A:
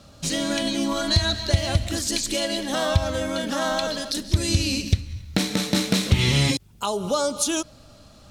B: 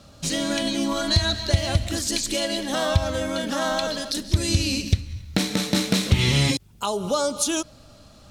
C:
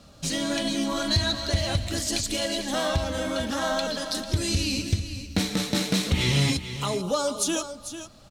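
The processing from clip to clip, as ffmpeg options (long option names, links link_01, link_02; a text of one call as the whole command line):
ffmpeg -i in.wav -af anull out.wav
ffmpeg -i in.wav -filter_complex "[0:a]asoftclip=type=tanh:threshold=-10.5dB,flanger=delay=4.1:depth=4.3:regen=-52:speed=1.3:shape=sinusoidal,asplit=2[link_01][link_02];[link_02]aecho=0:1:445:0.282[link_03];[link_01][link_03]amix=inputs=2:normalize=0,volume=2dB" out.wav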